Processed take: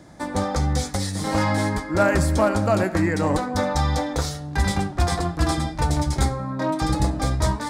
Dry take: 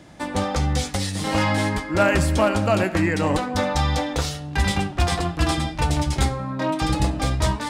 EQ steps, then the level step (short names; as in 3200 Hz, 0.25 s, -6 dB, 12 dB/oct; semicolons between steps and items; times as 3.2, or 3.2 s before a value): bell 2800 Hz -12 dB 0.53 oct; 0.0 dB